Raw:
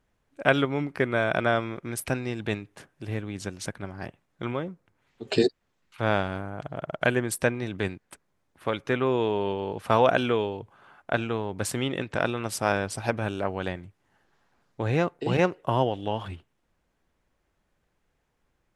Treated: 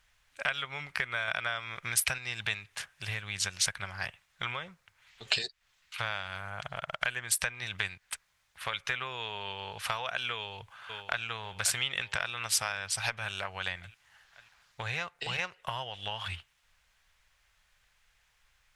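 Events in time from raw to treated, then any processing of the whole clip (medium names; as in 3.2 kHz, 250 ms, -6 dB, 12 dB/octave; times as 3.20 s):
1.28–2.18 s: gain +4.5 dB
10.35–11.24 s: echo throw 540 ms, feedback 60%, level -14 dB
whole clip: peaking EQ 2.6 kHz +7 dB 3 oct; compression 10:1, threshold -29 dBFS; amplifier tone stack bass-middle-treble 10-0-10; trim +8.5 dB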